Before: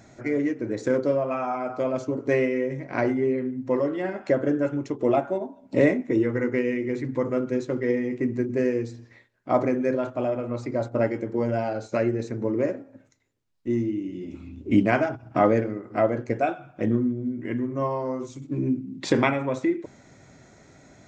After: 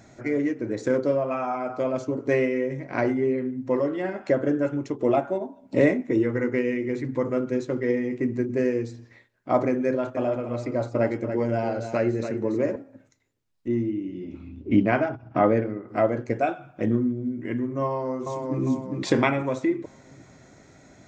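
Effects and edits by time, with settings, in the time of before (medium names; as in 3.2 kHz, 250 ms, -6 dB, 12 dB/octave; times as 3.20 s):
9.86–12.76 s: delay 286 ms -9 dB
13.68–15.89 s: distance through air 150 m
17.86–18.62 s: echo throw 400 ms, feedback 45%, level -3 dB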